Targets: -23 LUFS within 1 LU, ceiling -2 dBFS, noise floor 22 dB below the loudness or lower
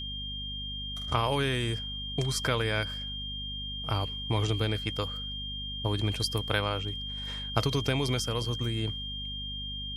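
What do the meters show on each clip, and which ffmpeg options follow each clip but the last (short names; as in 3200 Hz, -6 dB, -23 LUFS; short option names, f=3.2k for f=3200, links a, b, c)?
hum 50 Hz; harmonics up to 250 Hz; hum level -38 dBFS; steady tone 3200 Hz; tone level -36 dBFS; loudness -31.0 LUFS; peak -10.0 dBFS; loudness target -23.0 LUFS
-> -af "bandreject=f=50:t=h:w=4,bandreject=f=100:t=h:w=4,bandreject=f=150:t=h:w=4,bandreject=f=200:t=h:w=4,bandreject=f=250:t=h:w=4"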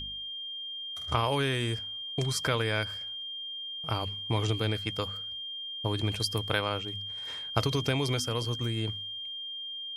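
hum none; steady tone 3200 Hz; tone level -36 dBFS
-> -af "bandreject=f=3.2k:w=30"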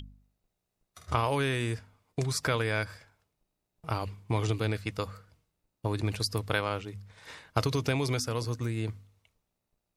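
steady tone none; loudness -31.5 LUFS; peak -9.5 dBFS; loudness target -23.0 LUFS
-> -af "volume=8.5dB,alimiter=limit=-2dB:level=0:latency=1"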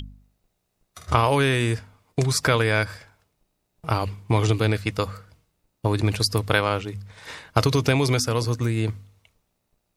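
loudness -23.0 LUFS; peak -2.0 dBFS; noise floor -75 dBFS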